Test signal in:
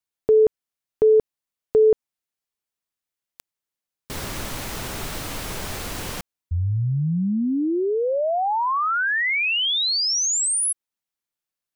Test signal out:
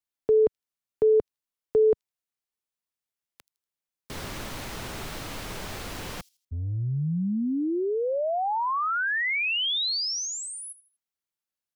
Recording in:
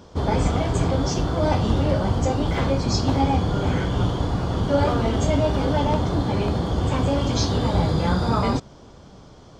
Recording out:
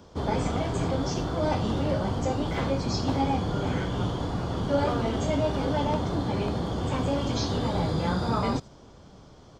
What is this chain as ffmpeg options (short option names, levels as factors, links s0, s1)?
-filter_complex "[0:a]acrossover=split=5700[s0][s1];[s1]acompressor=threshold=0.0112:ratio=4:attack=1:release=60[s2];[s0][s2]amix=inputs=2:normalize=0,acrossover=split=110|3900[s3][s4][s5];[s3]asoftclip=type=tanh:threshold=0.0335[s6];[s5]aecho=1:1:80|160|240:0.15|0.0509|0.0173[s7];[s6][s4][s7]amix=inputs=3:normalize=0,volume=0.596"